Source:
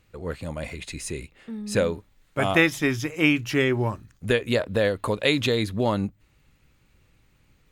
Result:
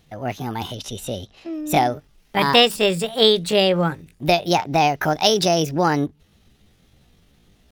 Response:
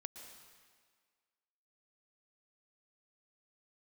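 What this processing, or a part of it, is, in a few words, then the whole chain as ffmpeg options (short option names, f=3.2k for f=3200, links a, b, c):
chipmunk voice: -filter_complex "[0:a]asetrate=64194,aresample=44100,atempo=0.686977,asettb=1/sr,asplit=3[a][b][c];[a]atrim=end=0.754[d];[b]atrim=start=0.75:end=1.54,asetpts=PTS-STARTPTS,afade=t=in:d=0.004:c=qsin,afade=t=out:st=0.786:d=0.004:c=qsin,lowpass=8.5k[e];[c]atrim=start=1.536[f];[d][e]acrossfade=d=0.004:c1=hsin:c2=qsin[g];[g][f]acrossfade=d=0.004:c1=qsin:c2=hsin,volume=5dB"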